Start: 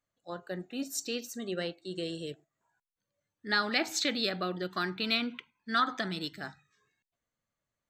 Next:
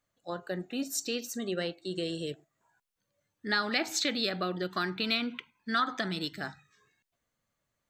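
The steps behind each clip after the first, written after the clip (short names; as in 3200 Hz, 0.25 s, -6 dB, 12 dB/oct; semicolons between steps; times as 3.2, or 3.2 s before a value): compressor 1.5:1, threshold -41 dBFS, peak gain reduction 7 dB; gain +5.5 dB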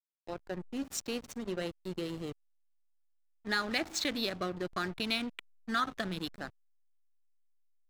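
backlash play -31 dBFS; gain -2 dB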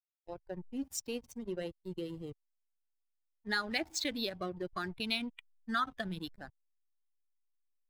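per-bin expansion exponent 1.5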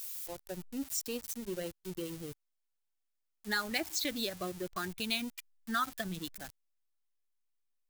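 switching spikes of -33 dBFS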